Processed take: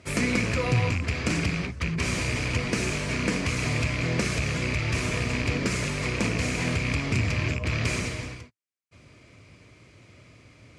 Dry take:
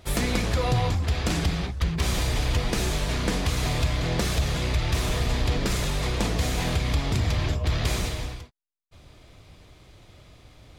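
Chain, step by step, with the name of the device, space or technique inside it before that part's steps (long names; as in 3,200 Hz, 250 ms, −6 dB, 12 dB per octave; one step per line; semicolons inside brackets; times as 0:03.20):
car door speaker with a rattle (loose part that buzzes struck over −22 dBFS, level −22 dBFS; loudspeaker in its box 100–9,400 Hz, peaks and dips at 110 Hz +4 dB, 250 Hz +4 dB, 790 Hz −9 dB, 2,300 Hz +7 dB, 3,600 Hz −9 dB)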